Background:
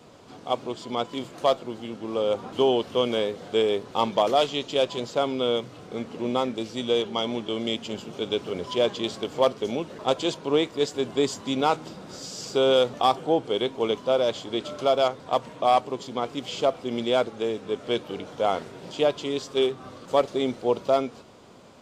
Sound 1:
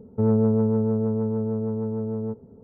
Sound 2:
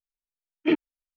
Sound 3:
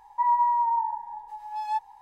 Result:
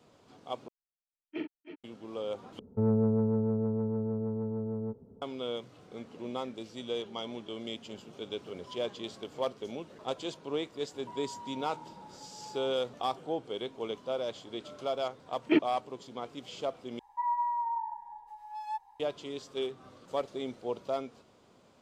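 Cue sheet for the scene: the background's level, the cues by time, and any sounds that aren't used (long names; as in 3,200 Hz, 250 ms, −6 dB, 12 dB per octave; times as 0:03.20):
background −11.5 dB
0:00.68: overwrite with 2 −15.5 dB + multi-tap delay 42/314/325 ms −7/−13.5/−11.5 dB
0:02.59: overwrite with 1 −6.5 dB
0:10.89: mix in 3 −13.5 dB + downward compressor, threshold −31 dBFS
0:14.84: mix in 2 −2.5 dB
0:16.99: overwrite with 3 −8.5 dB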